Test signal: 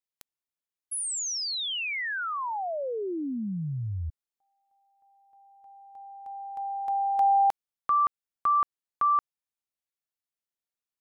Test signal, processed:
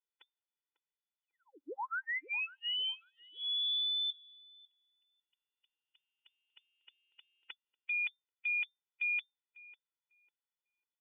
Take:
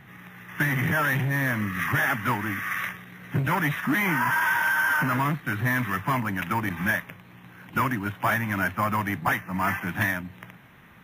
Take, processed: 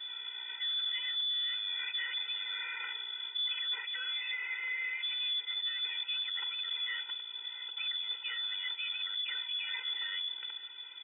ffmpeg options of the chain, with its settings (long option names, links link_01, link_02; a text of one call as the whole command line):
ffmpeg -i in.wav -filter_complex "[0:a]acrossover=split=2700[link_01][link_02];[link_02]acompressor=threshold=-42dB:ratio=4:attack=1:release=60[link_03];[link_01][link_03]amix=inputs=2:normalize=0,equalizer=frequency=140:width=2.3:gain=13,areverse,acompressor=threshold=-32dB:ratio=12:attack=3.1:release=49:knee=6:detection=rms,areverse,lowpass=frequency=3100:width_type=q:width=0.5098,lowpass=frequency=3100:width_type=q:width=0.6013,lowpass=frequency=3100:width_type=q:width=0.9,lowpass=frequency=3100:width_type=q:width=2.563,afreqshift=-3600,asplit=2[link_04][link_05];[link_05]adelay=548,lowpass=frequency=940:poles=1,volume=-13.5dB,asplit=2[link_06][link_07];[link_07]adelay=548,lowpass=frequency=940:poles=1,volume=0.37,asplit=2[link_08][link_09];[link_09]adelay=548,lowpass=frequency=940:poles=1,volume=0.37,asplit=2[link_10][link_11];[link_11]adelay=548,lowpass=frequency=940:poles=1,volume=0.37[link_12];[link_06][link_08][link_10][link_12]amix=inputs=4:normalize=0[link_13];[link_04][link_13]amix=inputs=2:normalize=0,afftfilt=real='re*eq(mod(floor(b*sr/1024/260),2),1)':imag='im*eq(mod(floor(b*sr/1024/260),2),1)':win_size=1024:overlap=0.75" out.wav